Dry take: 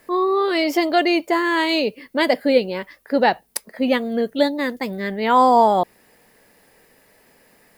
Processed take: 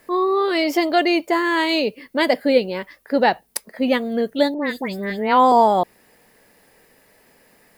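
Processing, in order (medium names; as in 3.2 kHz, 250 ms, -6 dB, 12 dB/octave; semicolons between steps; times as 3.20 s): 4.54–5.52 s: phase dispersion highs, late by 108 ms, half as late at 2.6 kHz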